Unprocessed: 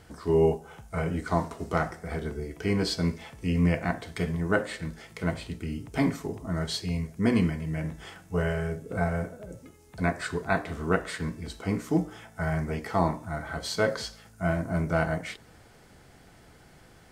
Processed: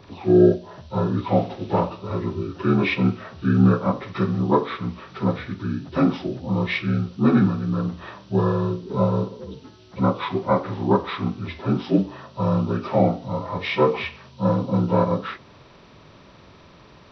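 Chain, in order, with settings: inharmonic rescaling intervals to 77%; gain +8 dB

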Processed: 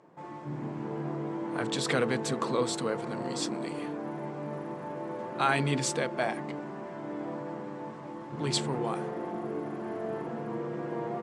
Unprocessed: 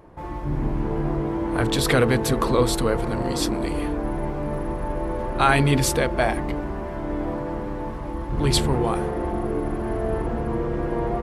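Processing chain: elliptic band-pass 150–7900 Hz, stop band 40 dB; high shelf 6200 Hz +5.5 dB; gain -8 dB

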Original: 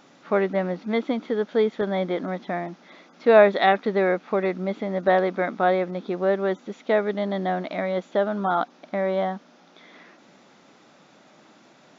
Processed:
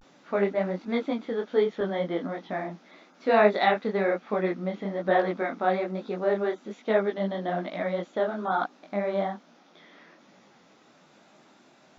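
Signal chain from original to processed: vibrato 0.37 Hz 54 cents; detuned doubles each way 40 cents

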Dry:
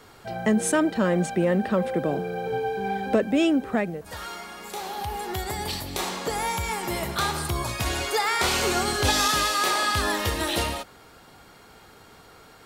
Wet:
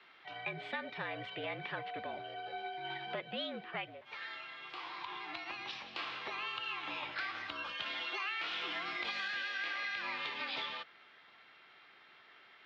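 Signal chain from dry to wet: differentiator; formant shift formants +4 st; mistuned SSB -56 Hz 150–3400 Hz; compressor, threshold -42 dBFS, peak gain reduction 7.5 dB; gain +6.5 dB

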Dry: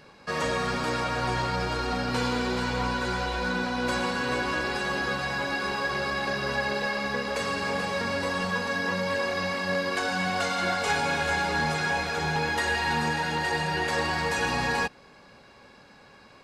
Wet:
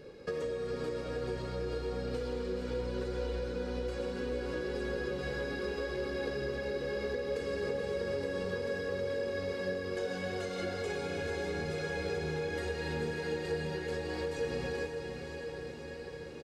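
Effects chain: resonant low shelf 650 Hz +8 dB, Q 3; comb 2.4 ms, depth 37%; compressor 10:1, threshold -27 dBFS, peak gain reduction 15 dB; diffused feedback echo 0.538 s, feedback 74%, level -7 dB; gain -6.5 dB

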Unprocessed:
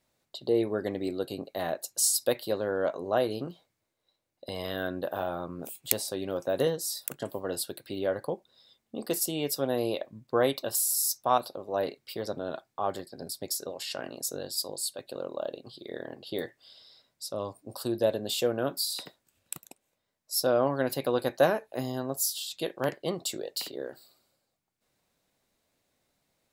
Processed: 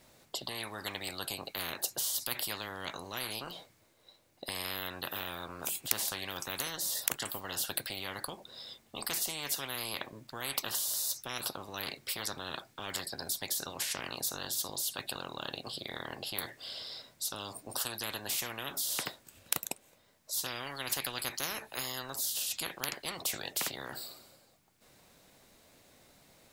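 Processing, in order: spectral compressor 10:1; gain -3 dB

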